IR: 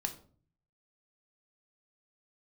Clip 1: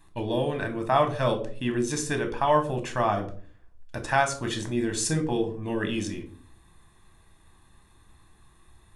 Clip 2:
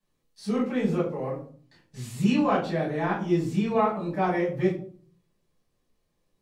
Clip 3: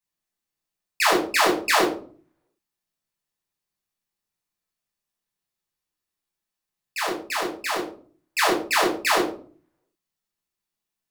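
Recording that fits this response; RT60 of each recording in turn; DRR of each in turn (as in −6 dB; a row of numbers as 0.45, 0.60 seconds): 1; 0.45, 0.45, 0.45 seconds; 5.5, −9.0, −4.0 decibels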